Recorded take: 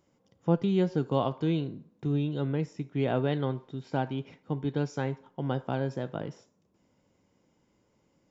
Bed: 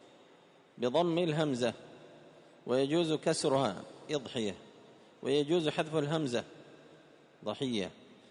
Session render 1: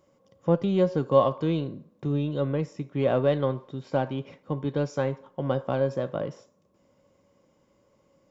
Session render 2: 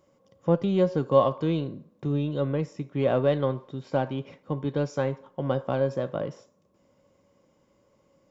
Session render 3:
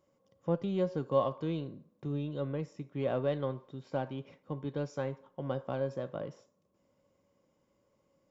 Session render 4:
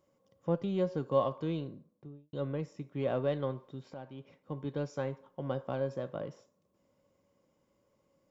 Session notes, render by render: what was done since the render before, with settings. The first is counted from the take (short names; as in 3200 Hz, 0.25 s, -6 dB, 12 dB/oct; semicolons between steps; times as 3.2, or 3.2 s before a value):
in parallel at -11 dB: soft clip -30 dBFS, distortion -7 dB; on the sum: small resonant body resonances 560/1100 Hz, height 12 dB, ringing for 45 ms
nothing audible
gain -8.5 dB
1.62–2.33 studio fade out; 3.94–4.65 fade in, from -13.5 dB